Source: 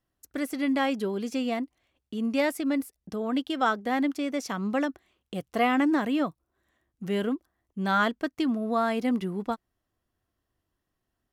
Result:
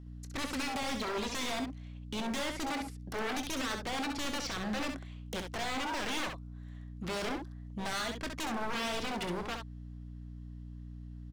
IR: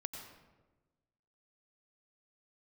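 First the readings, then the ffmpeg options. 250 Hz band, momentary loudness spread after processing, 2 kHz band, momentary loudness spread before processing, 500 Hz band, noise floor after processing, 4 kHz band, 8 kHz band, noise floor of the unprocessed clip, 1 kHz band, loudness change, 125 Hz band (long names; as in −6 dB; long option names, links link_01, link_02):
−11.5 dB, 13 LU, −5.0 dB, 11 LU, −9.0 dB, −46 dBFS, +1.5 dB, +4.5 dB, −82 dBFS, −7.5 dB, −8.0 dB, −2.5 dB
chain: -filter_complex "[0:a]highpass=frequency=770:poles=1,acrossover=split=4100[link_01][link_02];[link_02]acompressor=threshold=-51dB:ratio=4:attack=1:release=60[link_03];[link_01][link_03]amix=inputs=2:normalize=0,lowpass=6700,equalizer=frequency=4000:width_type=o:width=0.77:gain=2.5,asplit=2[link_04][link_05];[link_05]acompressor=threshold=-36dB:ratio=6,volume=-1.5dB[link_06];[link_04][link_06]amix=inputs=2:normalize=0,alimiter=limit=-24dB:level=0:latency=1:release=47,aeval=exprs='val(0)+0.00316*(sin(2*PI*60*n/s)+sin(2*PI*2*60*n/s)/2+sin(2*PI*3*60*n/s)/3+sin(2*PI*4*60*n/s)/4+sin(2*PI*5*60*n/s)/5)':channel_layout=same,aeval=exprs='0.0188*(abs(mod(val(0)/0.0188+3,4)-2)-1)':channel_layout=same,asplit=2[link_07][link_08];[link_08]aecho=0:1:23|66:0.2|0.501[link_09];[link_07][link_09]amix=inputs=2:normalize=0,volume=3.5dB"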